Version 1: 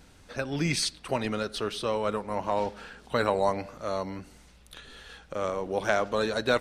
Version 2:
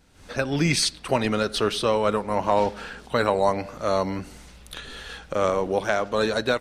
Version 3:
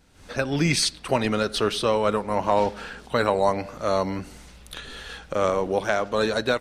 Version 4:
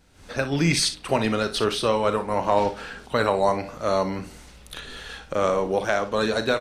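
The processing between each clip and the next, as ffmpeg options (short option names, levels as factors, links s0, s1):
-af "dynaudnorm=f=130:g=3:m=5.62,volume=0.501"
-af anull
-af "aecho=1:1:36|59:0.237|0.224"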